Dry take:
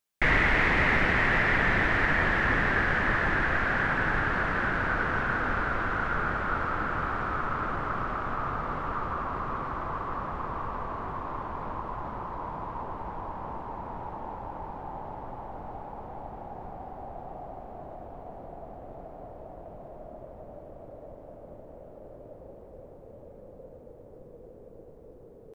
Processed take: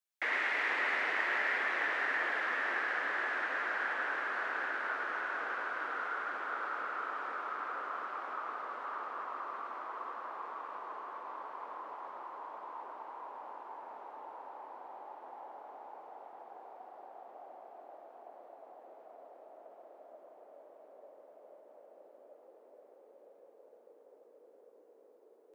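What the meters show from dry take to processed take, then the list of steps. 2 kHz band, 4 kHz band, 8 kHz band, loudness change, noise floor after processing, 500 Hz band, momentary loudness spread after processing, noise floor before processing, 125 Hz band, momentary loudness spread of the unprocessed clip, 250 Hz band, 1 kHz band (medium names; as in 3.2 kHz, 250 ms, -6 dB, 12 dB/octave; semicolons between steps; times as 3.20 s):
-7.5 dB, -7.5 dB, no reading, -8.0 dB, -62 dBFS, -10.5 dB, 22 LU, -49 dBFS, under -40 dB, 22 LU, -19.5 dB, -8.0 dB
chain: frequency shift -15 Hz; Bessel high-pass 520 Hz, order 6; two-band feedback delay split 1.7 kHz, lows 473 ms, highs 104 ms, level -4 dB; trim -9 dB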